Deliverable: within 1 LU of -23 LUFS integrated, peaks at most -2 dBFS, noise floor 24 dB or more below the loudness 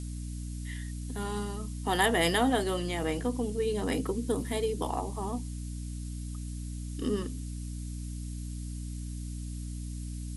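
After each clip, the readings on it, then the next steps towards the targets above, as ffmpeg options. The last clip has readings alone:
hum 60 Hz; highest harmonic 300 Hz; hum level -35 dBFS; noise floor -38 dBFS; noise floor target -57 dBFS; loudness -33.0 LUFS; peak level -12.0 dBFS; loudness target -23.0 LUFS
-> -af "bandreject=f=60:t=h:w=6,bandreject=f=120:t=h:w=6,bandreject=f=180:t=h:w=6,bandreject=f=240:t=h:w=6,bandreject=f=300:t=h:w=6"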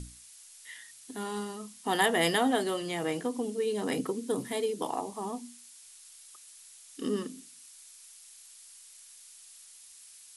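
hum not found; noise floor -53 dBFS; noise floor target -56 dBFS
-> -af "afftdn=nr=6:nf=-53"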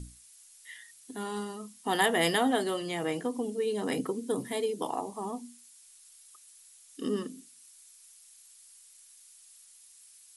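noise floor -56 dBFS; loudness -31.5 LUFS; peak level -11.5 dBFS; loudness target -23.0 LUFS
-> -af "volume=2.66"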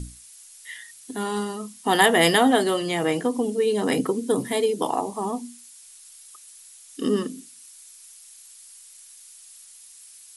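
loudness -23.0 LUFS; peak level -3.0 dBFS; noise floor -48 dBFS

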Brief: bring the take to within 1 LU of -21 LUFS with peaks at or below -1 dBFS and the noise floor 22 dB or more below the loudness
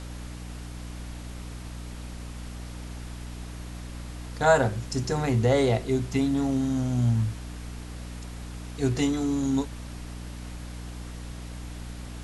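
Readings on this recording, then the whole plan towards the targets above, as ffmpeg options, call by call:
hum 60 Hz; highest harmonic 300 Hz; hum level -36 dBFS; noise floor -39 dBFS; noise floor target -48 dBFS; loudness -26.0 LUFS; peak level -8.0 dBFS; loudness target -21.0 LUFS
-> -af "bandreject=f=60:t=h:w=4,bandreject=f=120:t=h:w=4,bandreject=f=180:t=h:w=4,bandreject=f=240:t=h:w=4,bandreject=f=300:t=h:w=4"
-af "afftdn=nr=9:nf=-39"
-af "volume=1.78"

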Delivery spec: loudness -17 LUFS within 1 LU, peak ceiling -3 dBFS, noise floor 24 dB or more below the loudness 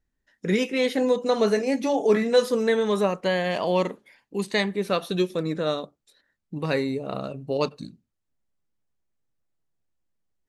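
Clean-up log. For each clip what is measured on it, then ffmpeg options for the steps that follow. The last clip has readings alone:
loudness -25.0 LUFS; peak level -8.5 dBFS; loudness target -17.0 LUFS
-> -af "volume=2.51,alimiter=limit=0.708:level=0:latency=1"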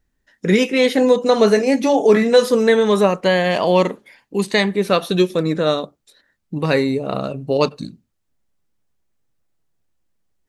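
loudness -17.0 LUFS; peak level -3.0 dBFS; noise floor -71 dBFS

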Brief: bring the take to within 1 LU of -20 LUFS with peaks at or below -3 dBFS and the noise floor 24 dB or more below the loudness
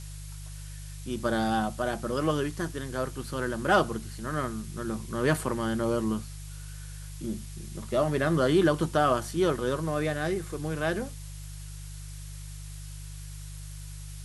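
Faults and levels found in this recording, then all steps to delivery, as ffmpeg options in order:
hum 50 Hz; highest harmonic 150 Hz; hum level -39 dBFS; noise floor -41 dBFS; noise floor target -53 dBFS; loudness -29.0 LUFS; peak level -11.0 dBFS; loudness target -20.0 LUFS
-> -af "bandreject=f=50:t=h:w=4,bandreject=f=100:t=h:w=4,bandreject=f=150:t=h:w=4"
-af "afftdn=nr=12:nf=-41"
-af "volume=2.82,alimiter=limit=0.708:level=0:latency=1"

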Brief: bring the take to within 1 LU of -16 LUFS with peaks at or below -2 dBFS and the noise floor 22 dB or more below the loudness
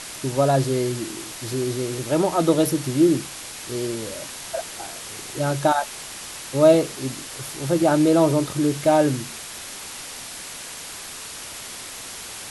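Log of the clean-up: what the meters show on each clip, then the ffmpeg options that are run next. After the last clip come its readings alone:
noise floor -36 dBFS; noise floor target -46 dBFS; loudness -23.5 LUFS; peak level -4.0 dBFS; loudness target -16.0 LUFS
-> -af "afftdn=nr=10:nf=-36"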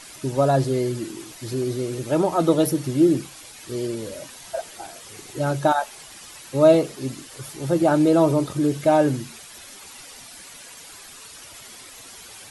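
noise floor -43 dBFS; noise floor target -44 dBFS
-> -af "afftdn=nr=6:nf=-43"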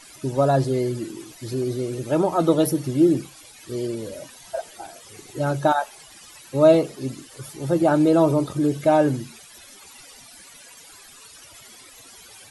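noise floor -47 dBFS; loudness -22.0 LUFS; peak level -4.5 dBFS; loudness target -16.0 LUFS
-> -af "volume=2,alimiter=limit=0.794:level=0:latency=1"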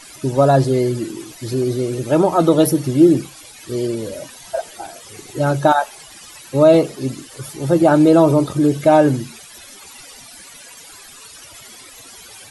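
loudness -16.0 LUFS; peak level -2.0 dBFS; noise floor -41 dBFS

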